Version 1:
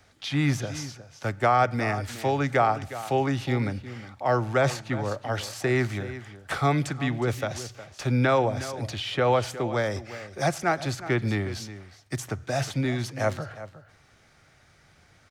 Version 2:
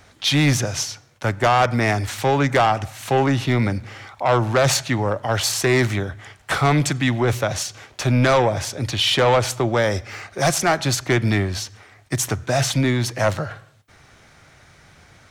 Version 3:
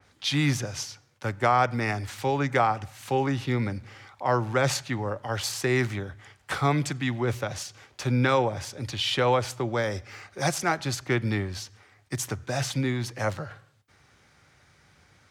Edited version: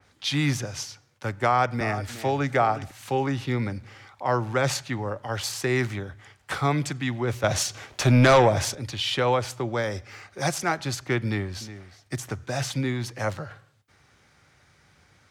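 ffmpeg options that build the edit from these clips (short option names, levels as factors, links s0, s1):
-filter_complex "[0:a]asplit=2[s0][s1];[2:a]asplit=4[s2][s3][s4][s5];[s2]atrim=end=1.812[s6];[s0]atrim=start=1.808:end=2.912[s7];[s3]atrim=start=2.908:end=7.442[s8];[1:a]atrim=start=7.438:end=8.752[s9];[s4]atrim=start=8.748:end=11.612[s10];[s1]atrim=start=11.608:end=12.312[s11];[s5]atrim=start=12.308[s12];[s6][s7]acrossfade=d=0.004:c1=hsin:c2=hsin[s13];[s13][s8]acrossfade=d=0.004:c1=hsin:c2=hsin[s14];[s14][s9]acrossfade=d=0.004:c1=hsin:c2=hsin[s15];[s15][s10]acrossfade=d=0.004:c1=hsin:c2=hsin[s16];[s16][s11]acrossfade=d=0.004:c1=hsin:c2=hsin[s17];[s17][s12]acrossfade=d=0.004:c1=hsin:c2=hsin"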